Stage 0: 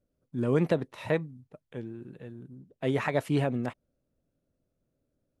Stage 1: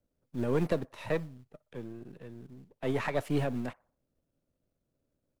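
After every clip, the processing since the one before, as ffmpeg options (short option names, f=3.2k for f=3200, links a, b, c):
-filter_complex "[0:a]aeval=exprs='if(lt(val(0),0),0.447*val(0),val(0))':c=same,acrossover=split=200|600|2200[a][b][c][d];[a]acrusher=bits=5:mode=log:mix=0:aa=0.000001[e];[c]asplit=2[f][g];[g]adelay=61,lowpass=f=1.5k:p=1,volume=-18.5dB,asplit=2[h][i];[i]adelay=61,lowpass=f=1.5k:p=1,volume=0.48,asplit=2[j][k];[k]adelay=61,lowpass=f=1.5k:p=1,volume=0.48,asplit=2[l][m];[m]adelay=61,lowpass=f=1.5k:p=1,volume=0.48[n];[f][h][j][l][n]amix=inputs=5:normalize=0[o];[e][b][o][d]amix=inputs=4:normalize=0"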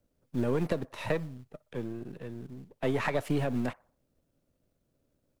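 -af "acompressor=threshold=-30dB:ratio=10,volume=5.5dB"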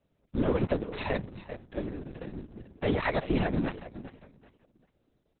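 -af "aecho=1:1:391|782|1173:0.211|0.055|0.0143,afftfilt=real='hypot(re,im)*cos(2*PI*random(0))':imag='hypot(re,im)*sin(2*PI*random(1))':win_size=512:overlap=0.75,volume=8dB" -ar 48000 -c:a libopus -b:a 6k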